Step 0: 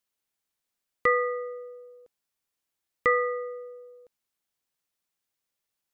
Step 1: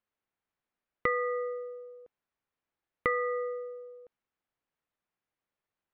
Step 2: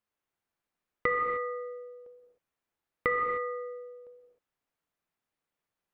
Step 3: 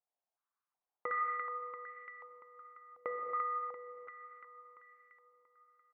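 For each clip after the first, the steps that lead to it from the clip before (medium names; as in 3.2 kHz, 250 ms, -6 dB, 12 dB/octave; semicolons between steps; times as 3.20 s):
level-controlled noise filter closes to 2 kHz, open at -23 dBFS; compression 3:1, threshold -29 dBFS, peak gain reduction 9 dB; trim +1.5 dB
gated-style reverb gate 330 ms flat, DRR 3.5 dB
feedback delay 342 ms, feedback 60%, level -8.5 dB; step-sequenced band-pass 2.7 Hz 720–1700 Hz; trim +2 dB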